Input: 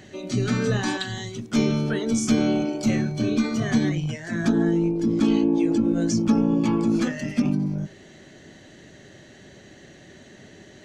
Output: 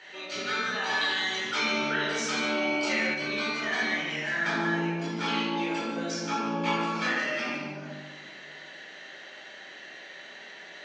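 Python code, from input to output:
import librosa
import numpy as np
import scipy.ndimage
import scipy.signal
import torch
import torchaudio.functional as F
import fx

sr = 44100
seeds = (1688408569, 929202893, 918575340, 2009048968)

y = scipy.signal.sosfilt(scipy.signal.butter(2, 990.0, 'highpass', fs=sr, output='sos'), x)
y = fx.high_shelf(y, sr, hz=2900.0, db=3.5)
y = fx.rider(y, sr, range_db=5, speed_s=0.5)
y = fx.air_absorb(y, sr, metres=200.0)
y = y + 10.0 ** (-10.0 / 20.0) * np.pad(y, (int(148 * sr / 1000.0), 0))[:len(y)]
y = fx.room_shoebox(y, sr, seeds[0], volume_m3=590.0, walls='mixed', distance_m=4.4)
y = fx.env_flatten(y, sr, amount_pct=50, at=(0.92, 3.13), fade=0.02)
y = y * 10.0 ** (-3.0 / 20.0)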